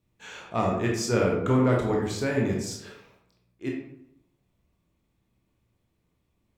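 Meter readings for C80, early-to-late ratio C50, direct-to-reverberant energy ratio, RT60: 6.5 dB, 3.0 dB, −1.5 dB, 0.80 s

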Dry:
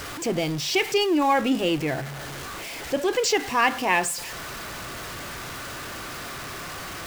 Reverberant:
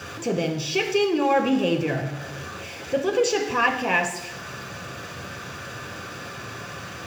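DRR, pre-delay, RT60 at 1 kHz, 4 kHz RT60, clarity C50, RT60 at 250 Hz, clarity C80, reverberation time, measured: 2.5 dB, 3 ms, 0.85 s, 0.85 s, 9.0 dB, 0.85 s, 11.0 dB, 0.85 s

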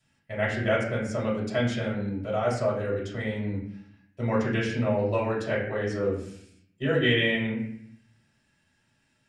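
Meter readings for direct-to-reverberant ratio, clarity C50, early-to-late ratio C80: −6.5 dB, 4.5 dB, 7.5 dB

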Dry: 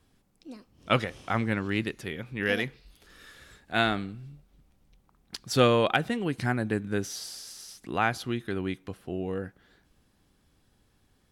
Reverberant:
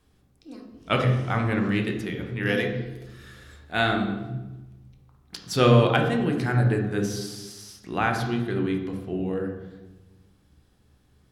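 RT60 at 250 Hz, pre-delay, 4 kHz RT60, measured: 1.5 s, 3 ms, 0.80 s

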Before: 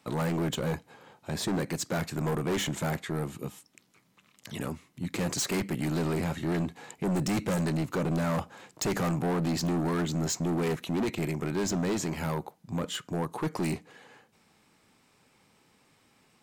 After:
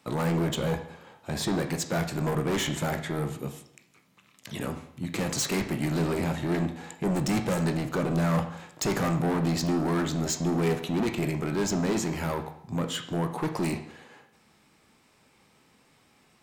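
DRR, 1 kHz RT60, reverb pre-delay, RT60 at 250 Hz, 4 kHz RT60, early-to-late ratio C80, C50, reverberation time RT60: 5.5 dB, 0.65 s, 14 ms, 0.70 s, 0.65 s, 13.0 dB, 10.0 dB, 0.70 s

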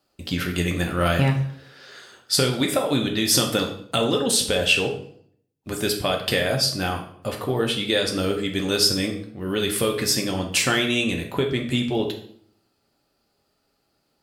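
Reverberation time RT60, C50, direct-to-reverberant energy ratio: 0.60 s, 8.0 dB, 1.5 dB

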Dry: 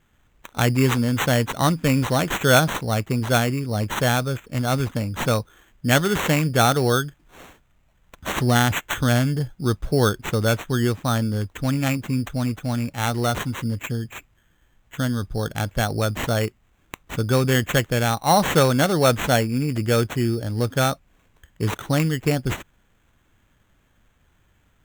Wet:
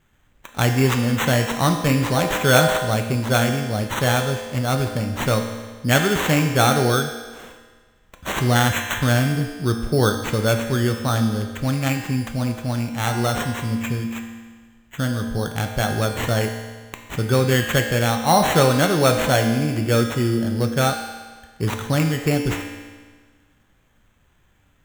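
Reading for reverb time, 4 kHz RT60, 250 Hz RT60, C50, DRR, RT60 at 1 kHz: 1.5 s, 1.4 s, 1.5 s, 6.0 dB, 3.0 dB, 1.5 s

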